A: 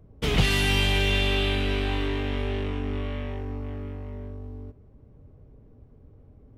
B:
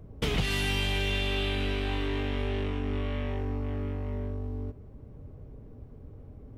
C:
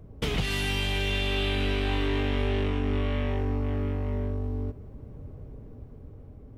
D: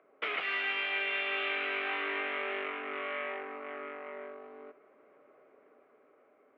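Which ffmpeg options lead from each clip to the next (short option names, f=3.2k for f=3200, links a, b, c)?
-af "acompressor=threshold=-34dB:ratio=3,volume=5dB"
-af "dynaudnorm=f=410:g=7:m=4dB"
-af "highpass=f=470:w=0.5412,highpass=f=470:w=1.3066,equalizer=f=480:t=q:w=4:g=-7,equalizer=f=880:t=q:w=4:g=-8,equalizer=f=1.3k:t=q:w=4:g=7,equalizer=f=2.2k:t=q:w=4:g=6,lowpass=f=2.6k:w=0.5412,lowpass=f=2.6k:w=1.3066"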